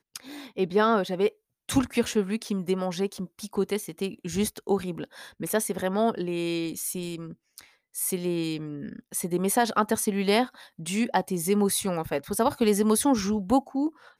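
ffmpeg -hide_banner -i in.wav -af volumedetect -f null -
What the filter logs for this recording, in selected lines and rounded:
mean_volume: -27.2 dB
max_volume: -10.2 dB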